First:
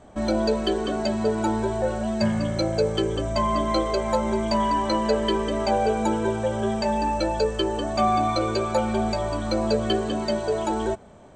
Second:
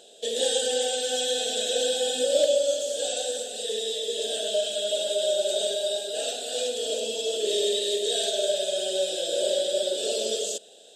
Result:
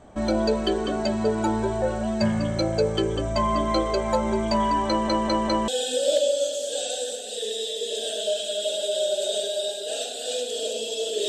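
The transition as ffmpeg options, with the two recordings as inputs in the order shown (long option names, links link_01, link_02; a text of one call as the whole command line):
ffmpeg -i cue0.wav -i cue1.wav -filter_complex "[0:a]apad=whole_dur=11.28,atrim=end=11.28,asplit=4[link_01][link_02][link_03][link_04];[link_01]atrim=end=5.082[link_05];[link_02]atrim=start=4.878:end=5.082[link_06];[link_03]atrim=start=4.878:end=5.082[link_07];[link_04]atrim=start=4.878:end=5.082[link_08];[1:a]atrim=start=1.948:end=7.55[link_09];[link_05][link_06]acrossfade=duration=0.004:curve1=hsin:curve2=hsin[link_10];[link_10][link_07]acrossfade=duration=0.004:curve1=hsin:curve2=hsin[link_11];[link_11][link_08]acrossfade=duration=0.004:curve1=hsin:curve2=hsin[link_12];[link_12][link_09]acrossfade=duration=0.004:curve1=hsin:curve2=hsin" out.wav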